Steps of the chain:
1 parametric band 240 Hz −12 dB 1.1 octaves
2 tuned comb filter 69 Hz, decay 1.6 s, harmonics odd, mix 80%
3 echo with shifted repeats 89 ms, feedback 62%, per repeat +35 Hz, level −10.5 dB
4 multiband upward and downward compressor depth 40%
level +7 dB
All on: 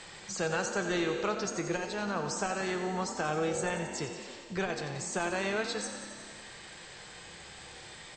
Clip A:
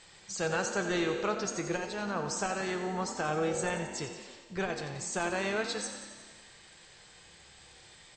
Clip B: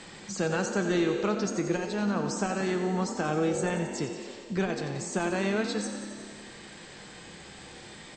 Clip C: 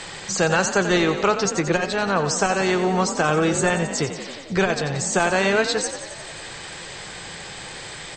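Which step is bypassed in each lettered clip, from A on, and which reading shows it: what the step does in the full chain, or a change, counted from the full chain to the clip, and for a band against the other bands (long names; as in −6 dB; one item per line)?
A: 4, change in crest factor −1.5 dB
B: 1, 250 Hz band +7.0 dB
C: 2, change in integrated loudness +12.5 LU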